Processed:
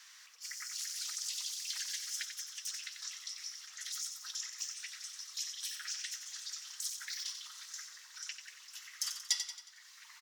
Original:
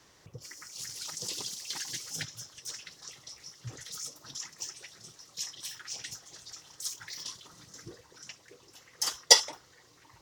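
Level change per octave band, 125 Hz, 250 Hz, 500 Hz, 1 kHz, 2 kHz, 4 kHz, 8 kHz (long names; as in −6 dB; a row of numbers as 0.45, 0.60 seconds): below −40 dB, below −40 dB, below −40 dB, −16.5 dB, −6.0 dB, −7.5 dB, −5.5 dB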